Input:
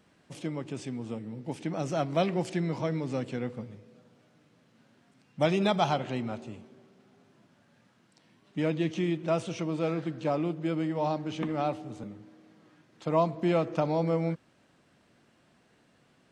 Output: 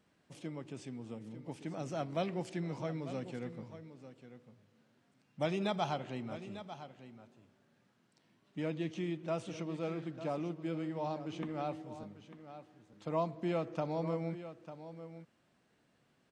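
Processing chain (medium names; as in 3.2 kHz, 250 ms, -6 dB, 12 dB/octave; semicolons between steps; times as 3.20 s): delay 897 ms -12.5 dB; trim -8.5 dB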